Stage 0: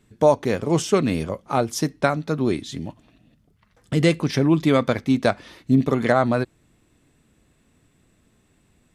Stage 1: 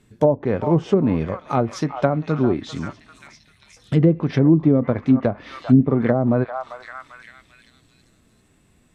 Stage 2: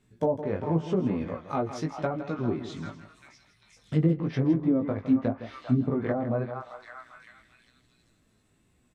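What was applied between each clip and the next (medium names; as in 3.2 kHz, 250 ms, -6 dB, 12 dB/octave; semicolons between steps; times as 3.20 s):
repeats whose band climbs or falls 394 ms, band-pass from 950 Hz, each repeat 0.7 oct, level -9.5 dB; low-pass that closes with the level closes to 450 Hz, closed at -13 dBFS; harmonic-percussive split percussive -5 dB; trim +4.5 dB
chorus 0.9 Hz, delay 16 ms, depth 3.6 ms; delay 161 ms -11.5 dB; trim -6 dB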